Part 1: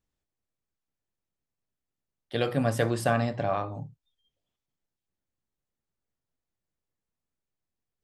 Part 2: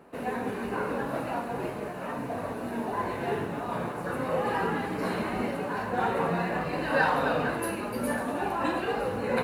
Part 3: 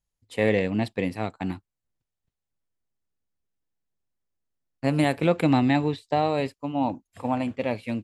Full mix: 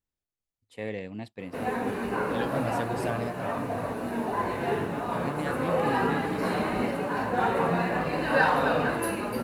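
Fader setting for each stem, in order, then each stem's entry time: -7.5 dB, +2.0 dB, -12.5 dB; 0.00 s, 1.40 s, 0.40 s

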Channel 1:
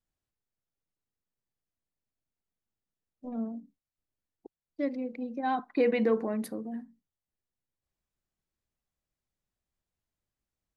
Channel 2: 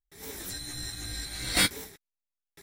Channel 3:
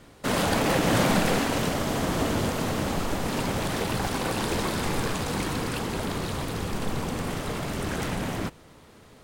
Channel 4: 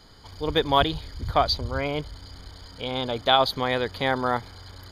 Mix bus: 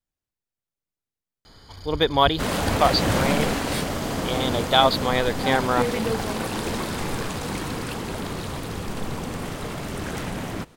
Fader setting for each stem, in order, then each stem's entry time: -1.0 dB, -9.5 dB, -0.5 dB, +2.0 dB; 0.00 s, 2.15 s, 2.15 s, 1.45 s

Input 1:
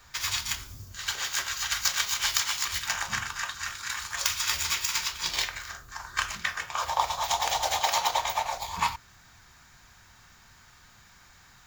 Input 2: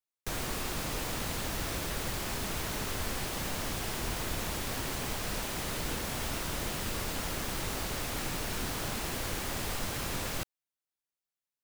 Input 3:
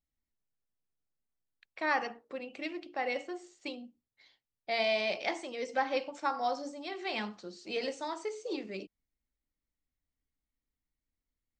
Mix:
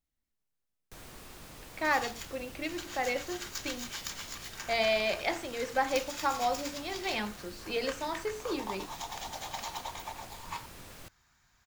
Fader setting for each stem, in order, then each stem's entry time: -13.5 dB, -14.0 dB, +2.0 dB; 1.70 s, 0.65 s, 0.00 s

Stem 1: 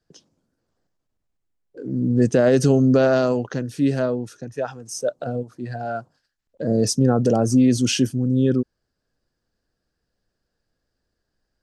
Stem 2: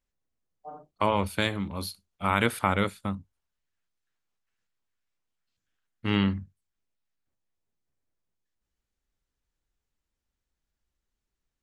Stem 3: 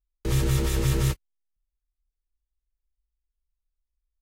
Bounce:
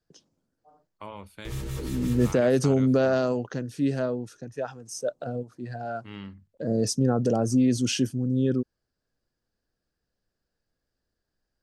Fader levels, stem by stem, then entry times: -5.5 dB, -16.0 dB, -10.5 dB; 0.00 s, 0.00 s, 1.20 s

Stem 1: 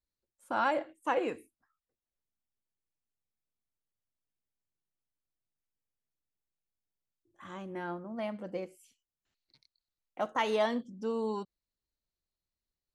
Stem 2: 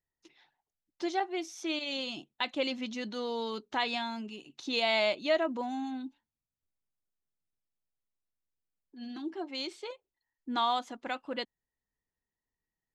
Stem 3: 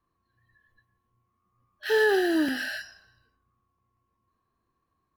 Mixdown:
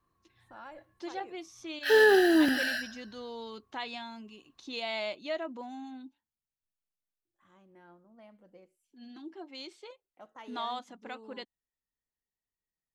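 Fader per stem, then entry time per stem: -18.5 dB, -7.0 dB, +1.5 dB; 0.00 s, 0.00 s, 0.00 s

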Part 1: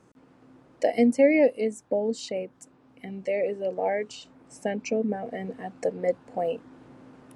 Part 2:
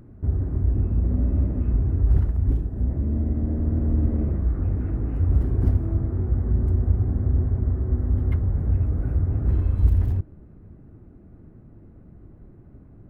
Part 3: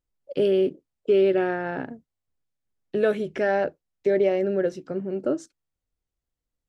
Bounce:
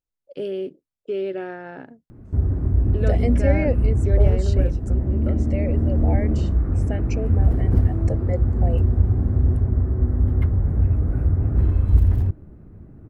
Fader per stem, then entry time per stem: -4.0 dB, +3.0 dB, -7.0 dB; 2.25 s, 2.10 s, 0.00 s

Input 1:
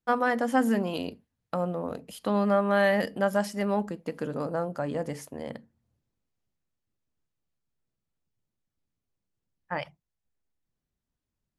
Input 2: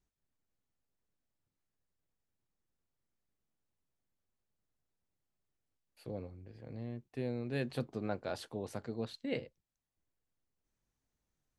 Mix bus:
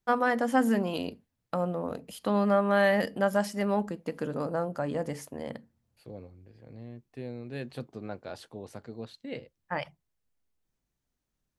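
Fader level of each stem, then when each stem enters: -0.5 dB, -1.5 dB; 0.00 s, 0.00 s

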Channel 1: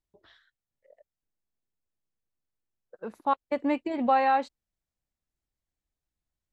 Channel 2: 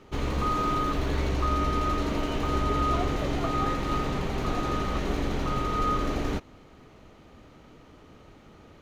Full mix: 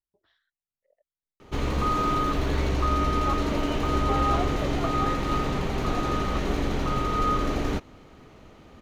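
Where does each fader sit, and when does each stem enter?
-11.0 dB, +2.0 dB; 0.00 s, 1.40 s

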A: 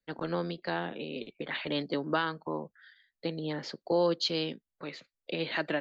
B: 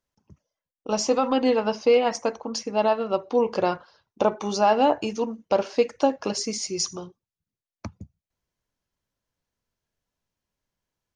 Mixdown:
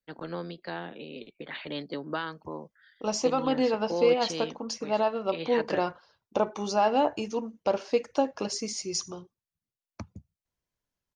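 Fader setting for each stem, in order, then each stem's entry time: -3.5 dB, -4.5 dB; 0.00 s, 2.15 s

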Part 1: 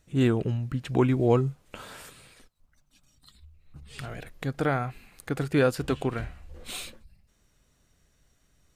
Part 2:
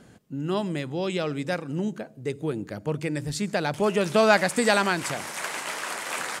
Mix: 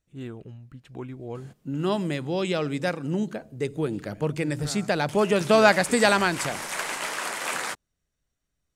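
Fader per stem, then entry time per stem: -14.5 dB, +1.5 dB; 0.00 s, 1.35 s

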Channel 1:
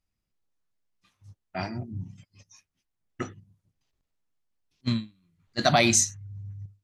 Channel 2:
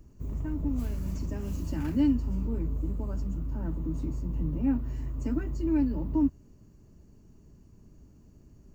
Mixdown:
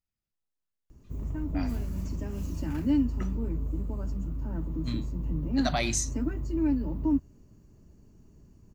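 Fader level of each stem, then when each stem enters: -8.5 dB, -0.5 dB; 0.00 s, 0.90 s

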